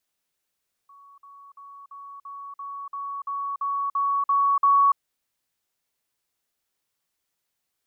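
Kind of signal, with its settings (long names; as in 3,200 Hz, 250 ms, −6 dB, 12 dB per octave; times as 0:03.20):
level staircase 1,120 Hz −47.5 dBFS, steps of 3 dB, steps 12, 0.29 s 0.05 s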